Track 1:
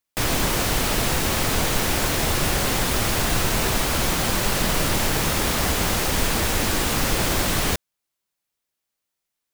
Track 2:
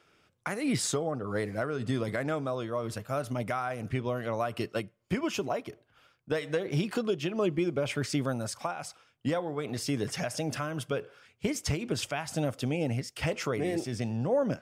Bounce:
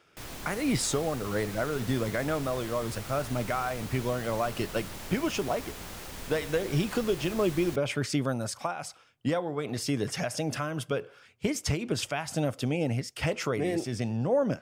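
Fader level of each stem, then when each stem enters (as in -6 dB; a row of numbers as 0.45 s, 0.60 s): -19.5 dB, +1.5 dB; 0.00 s, 0.00 s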